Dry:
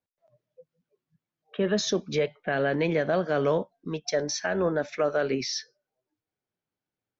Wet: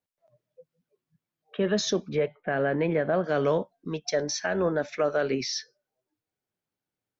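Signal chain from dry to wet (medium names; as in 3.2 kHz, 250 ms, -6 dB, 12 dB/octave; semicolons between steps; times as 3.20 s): 2.09–3.24 s: low-pass 2.1 kHz 12 dB/octave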